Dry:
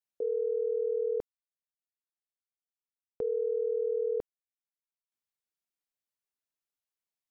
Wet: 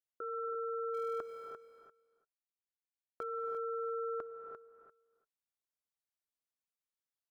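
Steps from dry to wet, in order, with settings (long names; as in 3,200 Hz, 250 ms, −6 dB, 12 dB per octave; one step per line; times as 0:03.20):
0:00.94–0:03.23: mu-law and A-law mismatch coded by mu
parametric band 240 Hz +4.5 dB
notch filter 480 Hz, Q 12
ring modulation 900 Hz
repeating echo 346 ms, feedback 15%, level −9 dB
reverb whose tail is shaped and stops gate 360 ms rising, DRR 6 dB
level −4.5 dB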